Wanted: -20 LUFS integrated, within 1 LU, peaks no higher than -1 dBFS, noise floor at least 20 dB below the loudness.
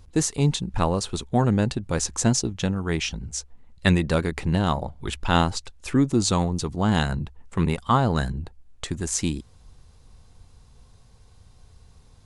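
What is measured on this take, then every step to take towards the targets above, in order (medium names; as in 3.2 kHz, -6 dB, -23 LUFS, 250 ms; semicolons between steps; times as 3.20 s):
loudness -24.5 LUFS; peak level -4.0 dBFS; loudness target -20.0 LUFS
-> trim +4.5 dB; peak limiter -1 dBFS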